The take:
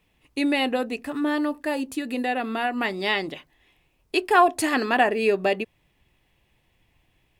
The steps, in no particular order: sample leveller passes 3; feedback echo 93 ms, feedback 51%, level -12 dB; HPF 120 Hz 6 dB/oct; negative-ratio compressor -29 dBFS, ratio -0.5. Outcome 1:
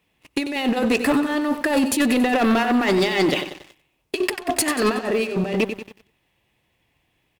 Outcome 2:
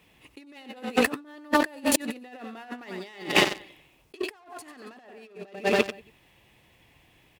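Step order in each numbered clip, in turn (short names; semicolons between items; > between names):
HPF > negative-ratio compressor > feedback echo > sample leveller; feedback echo > sample leveller > negative-ratio compressor > HPF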